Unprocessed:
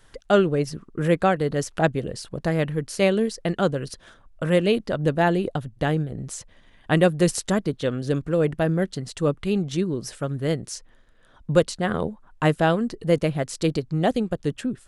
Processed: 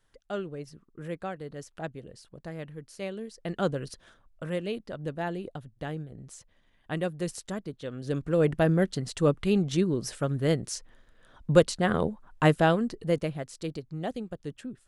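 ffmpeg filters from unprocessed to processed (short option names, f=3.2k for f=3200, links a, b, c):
-af "volume=6.5dB,afade=t=in:st=3.31:d=0.38:silence=0.281838,afade=t=out:st=3.69:d=0.9:silence=0.421697,afade=t=in:st=7.9:d=0.62:silence=0.266073,afade=t=out:st=12.45:d=1.06:silence=0.281838"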